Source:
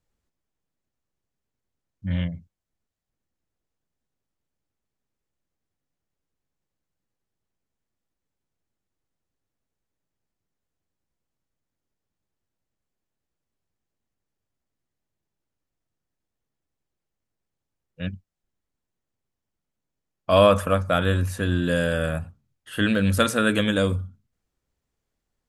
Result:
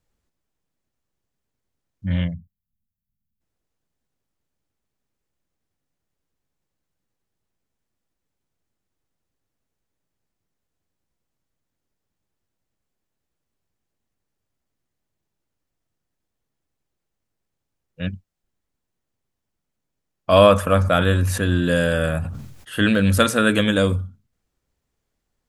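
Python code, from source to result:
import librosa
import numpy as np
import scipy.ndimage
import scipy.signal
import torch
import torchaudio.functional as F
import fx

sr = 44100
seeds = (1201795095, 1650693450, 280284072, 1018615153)

y = fx.spec_erase(x, sr, start_s=2.34, length_s=1.07, low_hz=250.0, high_hz=11000.0)
y = fx.sustainer(y, sr, db_per_s=52.0, at=(20.61, 23.21))
y = y * 10.0 ** (3.5 / 20.0)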